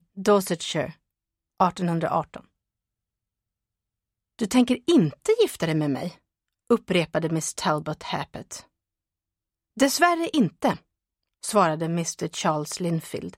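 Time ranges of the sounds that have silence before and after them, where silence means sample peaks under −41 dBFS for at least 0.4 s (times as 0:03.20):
0:01.60–0:02.41
0:04.39–0:06.14
0:06.70–0:08.61
0:09.77–0:10.78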